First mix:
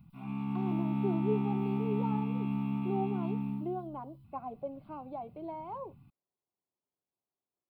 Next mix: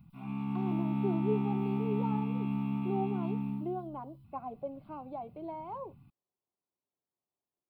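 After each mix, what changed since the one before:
no change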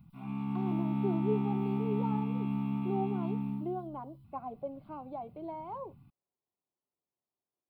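master: add peaking EQ 2.6 kHz -3.5 dB 0.2 oct

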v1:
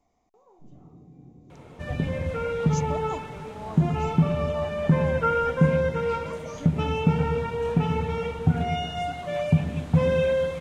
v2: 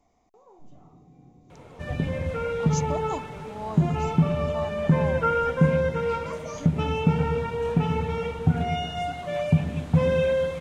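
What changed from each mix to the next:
speech +4.0 dB; first sound -4.0 dB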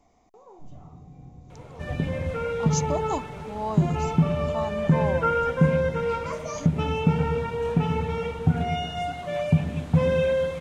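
speech +4.5 dB; first sound: remove band-pass filter 320 Hz, Q 1.3

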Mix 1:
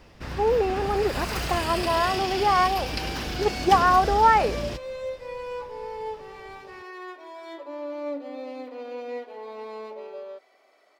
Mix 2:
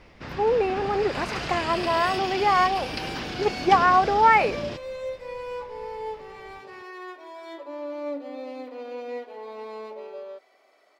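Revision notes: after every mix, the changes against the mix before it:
speech: add peaking EQ 2.3 kHz +11.5 dB 0.39 oct; first sound: add band-pass 110–5000 Hz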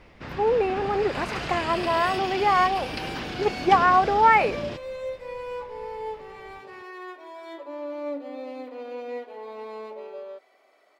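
master: add peaking EQ 5.3 kHz -4 dB 0.73 oct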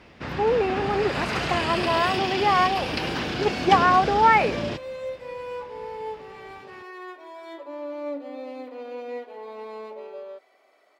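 first sound +5.0 dB; master: add high-pass 54 Hz

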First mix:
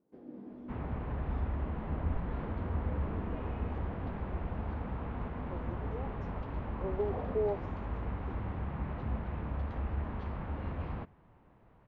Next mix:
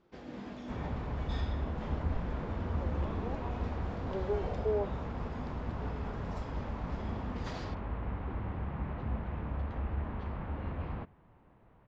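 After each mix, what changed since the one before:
speech: entry -2.70 s; first sound: remove band-pass filter 310 Hz, Q 1.6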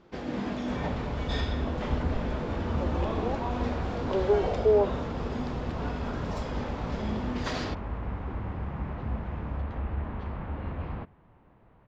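speech +10.0 dB; first sound +11.5 dB; second sound +3.0 dB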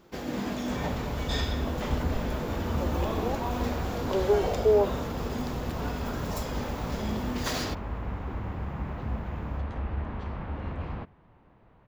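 master: remove distance through air 140 m

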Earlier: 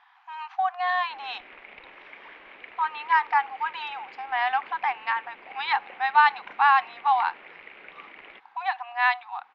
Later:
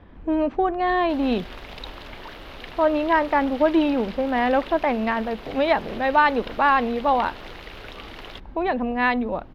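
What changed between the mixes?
speech: remove brick-wall FIR band-pass 720–7400 Hz; background: remove four-pole ladder low-pass 2.5 kHz, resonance 65%

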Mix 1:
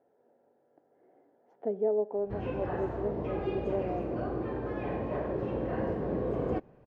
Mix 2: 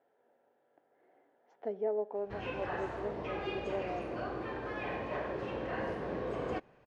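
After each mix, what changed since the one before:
master: add tilt shelf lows -9 dB, about 920 Hz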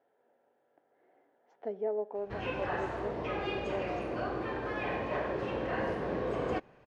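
background +3.5 dB

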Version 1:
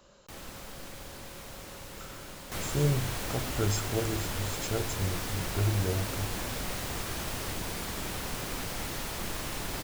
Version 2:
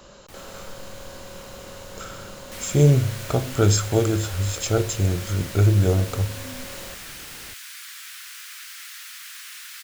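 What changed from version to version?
speech +11.5 dB; second sound: add steep high-pass 1.4 kHz 36 dB/octave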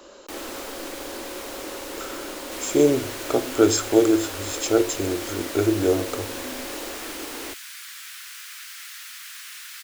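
first sound +9.5 dB; master: add resonant low shelf 220 Hz -11.5 dB, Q 3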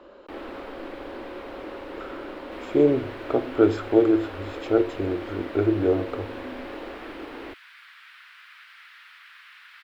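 master: add distance through air 450 m

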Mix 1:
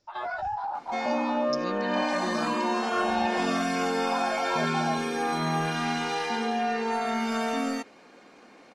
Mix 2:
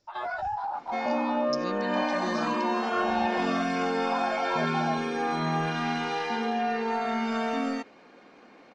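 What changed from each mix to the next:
second sound: add distance through air 110 m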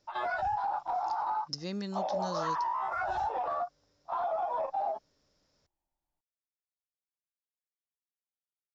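second sound: muted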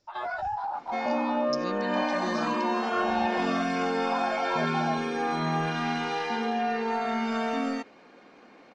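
second sound: unmuted

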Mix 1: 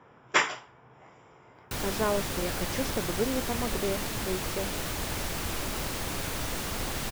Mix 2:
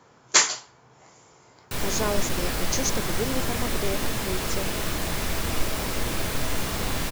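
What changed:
speech: remove Savitzky-Golay filter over 25 samples; reverb: on, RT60 0.90 s

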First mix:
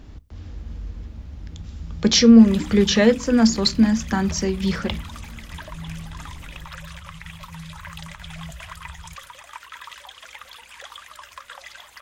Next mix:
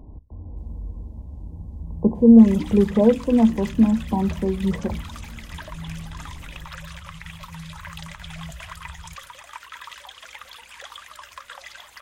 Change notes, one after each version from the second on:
speech: add brick-wall FIR low-pass 1.1 kHz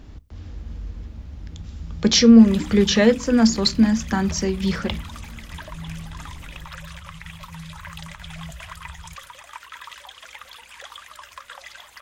speech: remove brick-wall FIR low-pass 1.1 kHz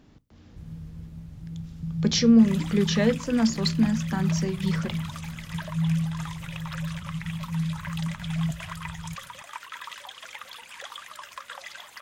speech -8.0 dB; first sound +9.0 dB; master: add resonant low shelf 100 Hz -10.5 dB, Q 1.5

